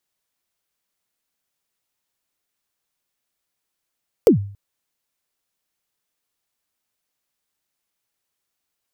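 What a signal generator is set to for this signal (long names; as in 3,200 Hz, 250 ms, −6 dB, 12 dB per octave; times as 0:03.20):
synth kick length 0.28 s, from 520 Hz, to 100 Hz, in 110 ms, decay 0.48 s, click on, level −5 dB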